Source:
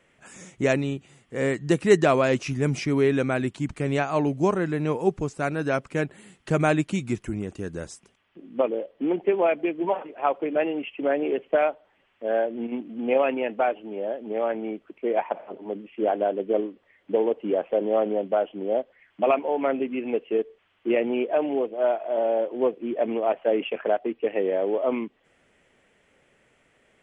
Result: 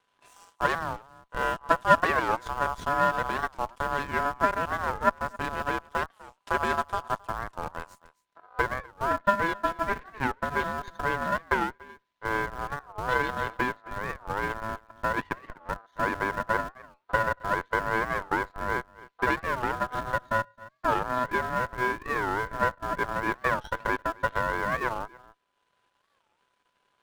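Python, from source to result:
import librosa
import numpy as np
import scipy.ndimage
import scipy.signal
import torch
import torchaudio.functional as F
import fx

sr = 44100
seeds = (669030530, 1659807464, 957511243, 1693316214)

p1 = fx.dynamic_eq(x, sr, hz=380.0, q=1.9, threshold_db=-37.0, ratio=4.0, max_db=6)
p2 = np.maximum(p1, 0.0)
p3 = p2 * np.sin(2.0 * np.pi * 1000.0 * np.arange(len(p2)) / sr)
p4 = fx.schmitt(p3, sr, flips_db=-28.0)
p5 = p3 + (p4 * librosa.db_to_amplitude(-7.0))
p6 = fx.peak_eq(p5, sr, hz=1600.0, db=2.5, octaves=0.26)
p7 = p6 + fx.echo_single(p6, sr, ms=267, db=-17.5, dry=0)
p8 = fx.transient(p7, sr, attack_db=3, sustain_db=-5)
p9 = fx.record_warp(p8, sr, rpm=45.0, depth_cents=250.0)
y = p9 * librosa.db_to_amplitude(-4.0)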